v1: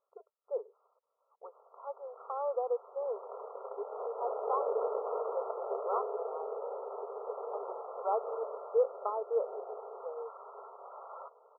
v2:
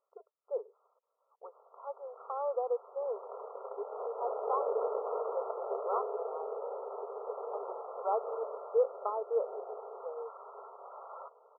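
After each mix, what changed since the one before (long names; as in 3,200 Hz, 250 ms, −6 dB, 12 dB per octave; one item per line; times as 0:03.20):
nothing changed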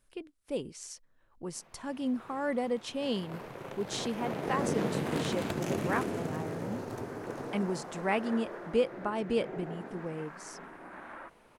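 background: add high-pass filter 460 Hz 6 dB per octave
master: remove linear-phase brick-wall band-pass 400–1,400 Hz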